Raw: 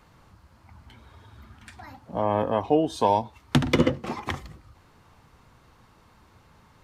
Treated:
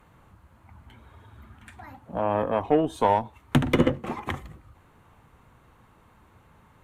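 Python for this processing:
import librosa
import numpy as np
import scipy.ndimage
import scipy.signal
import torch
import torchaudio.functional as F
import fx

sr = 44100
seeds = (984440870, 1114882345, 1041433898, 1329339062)

y = fx.cheby_harmonics(x, sr, harmonics=(8,), levels_db=(-26,), full_scale_db=-4.5)
y = fx.peak_eq(y, sr, hz=5000.0, db=-14.0, octaves=0.69)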